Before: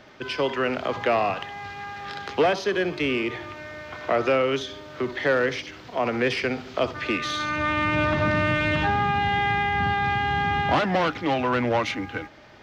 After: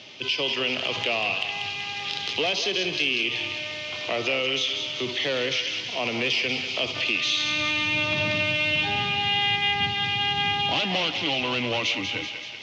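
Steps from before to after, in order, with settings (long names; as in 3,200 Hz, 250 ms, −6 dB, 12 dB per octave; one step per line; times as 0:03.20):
elliptic band-pass filter 100–6,500 Hz
high shelf with overshoot 2,100 Hz +10 dB, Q 3
transient designer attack −4 dB, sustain +2 dB
downward compressor 2.5 to 1, threshold −25 dBFS, peak gain reduction 8.5 dB
feedback echo with a high-pass in the loop 190 ms, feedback 65%, high-pass 930 Hz, level −6 dB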